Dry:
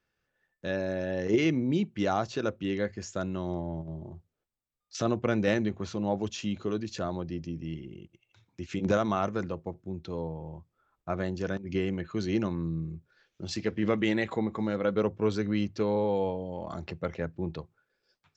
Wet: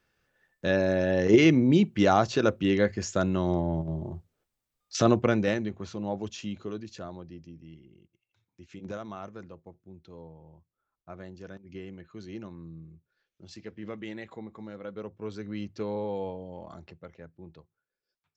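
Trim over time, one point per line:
5.14 s +6.5 dB
5.61 s -3 dB
6.42 s -3 dB
7.72 s -12 dB
15.05 s -12 dB
15.80 s -5 dB
16.58 s -5 dB
17.09 s -14 dB

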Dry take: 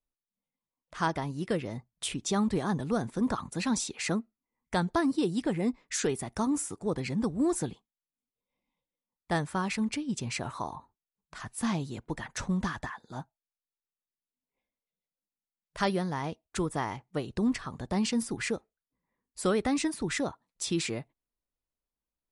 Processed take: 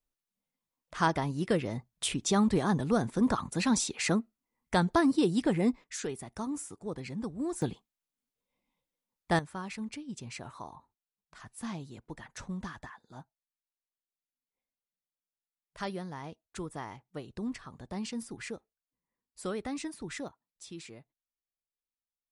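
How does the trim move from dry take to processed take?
+2 dB
from 5.84 s -7 dB
from 7.62 s +2 dB
from 9.39 s -8.5 dB
from 20.28 s -15 dB

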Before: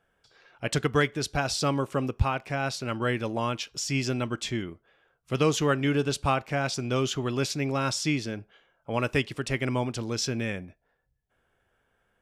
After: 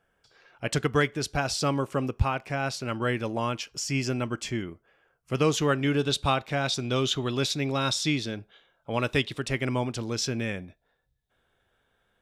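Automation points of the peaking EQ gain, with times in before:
peaking EQ 3.7 kHz 0.23 oct
-2.5 dB
from 3.61 s -10 dB
from 5.44 s +2 dB
from 6.01 s +13.5 dB
from 9.38 s +2 dB
from 10.59 s +13 dB

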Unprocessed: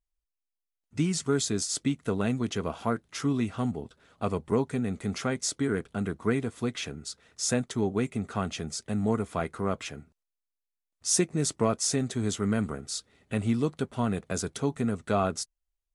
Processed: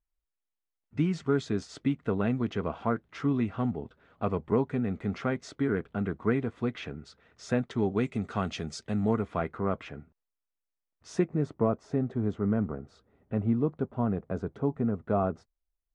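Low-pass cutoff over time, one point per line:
7.53 s 2.3 kHz
8.17 s 4.8 kHz
8.75 s 4.8 kHz
9.57 s 2 kHz
11.07 s 2 kHz
11.56 s 1 kHz

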